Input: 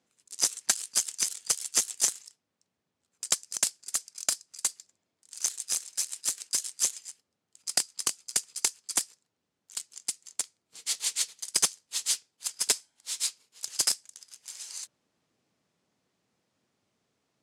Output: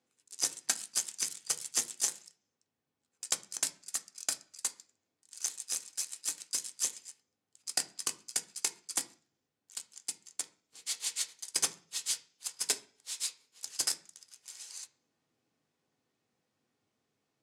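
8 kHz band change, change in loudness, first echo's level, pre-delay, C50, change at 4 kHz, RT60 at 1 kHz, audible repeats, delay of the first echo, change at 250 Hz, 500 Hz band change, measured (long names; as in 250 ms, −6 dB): −5.5 dB, −5.5 dB, no echo audible, 3 ms, 16.5 dB, −5.5 dB, 0.40 s, no echo audible, no echo audible, −3.5 dB, −4.5 dB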